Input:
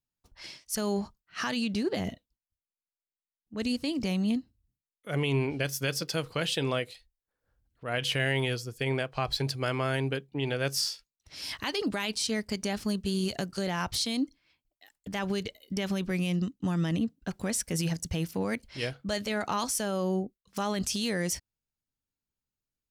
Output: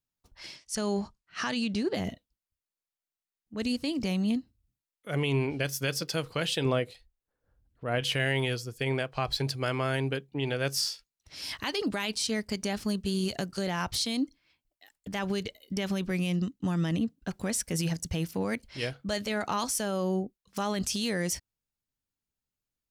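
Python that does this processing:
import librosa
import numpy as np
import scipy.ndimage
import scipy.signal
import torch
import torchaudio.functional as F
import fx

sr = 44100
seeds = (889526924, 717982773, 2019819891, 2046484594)

y = fx.lowpass(x, sr, hz=9700.0, slope=24, at=(0.56, 1.93))
y = fx.tilt_shelf(y, sr, db=4.5, hz=1300.0, at=(6.65, 8.01))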